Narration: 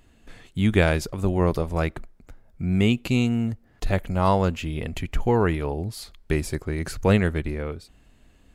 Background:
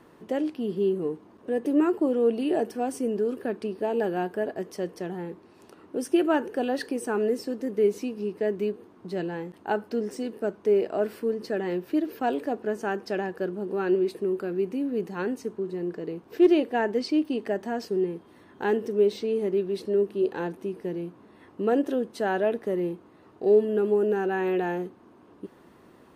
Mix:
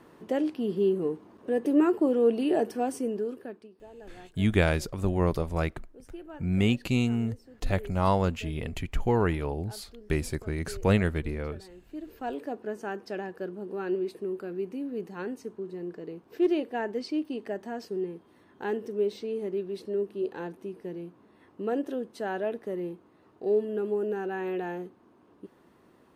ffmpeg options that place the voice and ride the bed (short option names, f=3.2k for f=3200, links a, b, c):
-filter_complex "[0:a]adelay=3800,volume=-4dB[a];[1:a]volume=15.5dB,afade=t=out:st=2.8:d=0.89:silence=0.0841395,afade=t=in:st=11.82:d=0.59:silence=0.16788[b];[a][b]amix=inputs=2:normalize=0"